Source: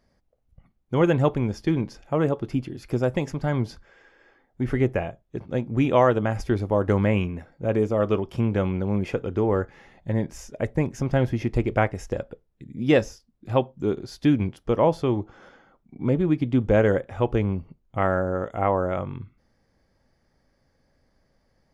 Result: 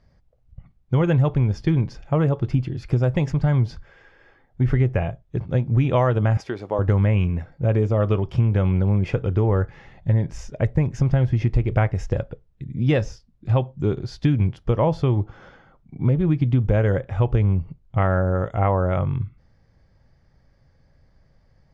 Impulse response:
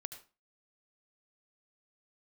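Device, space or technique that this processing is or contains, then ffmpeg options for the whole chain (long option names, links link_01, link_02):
jukebox: -filter_complex "[0:a]lowpass=5600,lowshelf=frequency=180:width_type=q:width=1.5:gain=7.5,acompressor=threshold=-18dB:ratio=5,asettb=1/sr,asplit=3[link_01][link_02][link_03];[link_01]atrim=end=6.374[link_04];[link_02]atrim=start=6.37:end=6.79,asetpts=PTS-STARTPTS,afade=type=in:duration=0.004:curve=qsin,afade=type=out:start_time=0.416:duration=0.004:curve=qsin,highpass=340[link_05];[link_03]atrim=start=6.786[link_06];[link_04][link_05]acrossfade=duration=0.004:curve1=hsin:curve2=qsin[link_07];[link_07][link_06]acrossfade=duration=0.004:curve1=qsin:curve2=hsin,volume=3dB"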